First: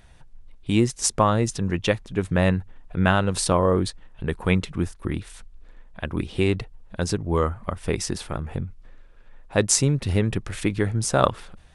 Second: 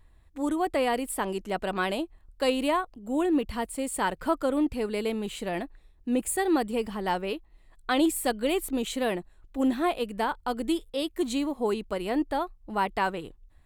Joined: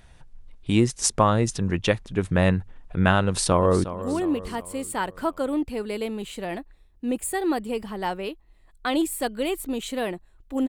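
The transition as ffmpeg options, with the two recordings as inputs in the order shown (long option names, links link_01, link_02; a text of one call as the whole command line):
ffmpeg -i cue0.wav -i cue1.wav -filter_complex "[0:a]apad=whole_dur=10.68,atrim=end=10.68,atrim=end=3.842[link_01];[1:a]atrim=start=2.878:end=9.72[link_02];[link_01][link_02]acrossfade=duration=0.004:curve1=hsin:curve2=hsin,asplit=2[link_03][link_04];[link_04]afade=type=in:start_time=3.25:duration=0.01,afade=type=out:start_time=3.84:duration=0.01,aecho=0:1:360|720|1080|1440|1800:0.223872|0.111936|0.055968|0.027984|0.013992[link_05];[link_03][link_05]amix=inputs=2:normalize=0" out.wav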